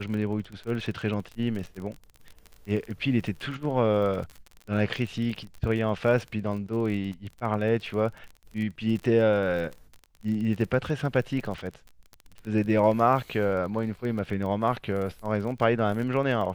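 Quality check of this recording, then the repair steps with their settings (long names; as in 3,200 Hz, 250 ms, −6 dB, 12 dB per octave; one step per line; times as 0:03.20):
surface crackle 31 per second −33 dBFS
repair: click removal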